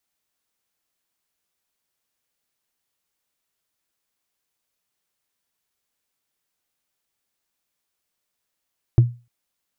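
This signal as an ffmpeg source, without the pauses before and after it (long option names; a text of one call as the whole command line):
ffmpeg -f lavfi -i "aevalsrc='0.531*pow(10,-3*t/0.3)*sin(2*PI*120*t)+0.133*pow(10,-3*t/0.089)*sin(2*PI*330.8*t)+0.0335*pow(10,-3*t/0.04)*sin(2*PI*648.5*t)+0.00841*pow(10,-3*t/0.022)*sin(2*PI*1072*t)+0.00211*pow(10,-3*t/0.013)*sin(2*PI*1600.8*t)':duration=0.3:sample_rate=44100" out.wav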